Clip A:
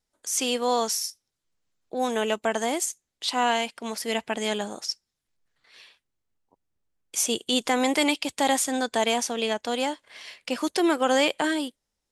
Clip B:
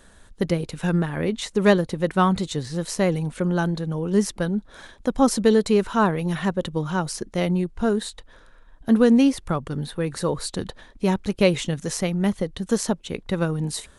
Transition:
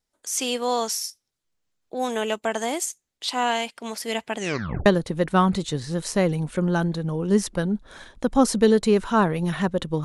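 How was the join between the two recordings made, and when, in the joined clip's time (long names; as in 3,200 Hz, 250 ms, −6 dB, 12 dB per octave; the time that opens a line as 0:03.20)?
clip A
0:04.38: tape stop 0.48 s
0:04.86: continue with clip B from 0:01.69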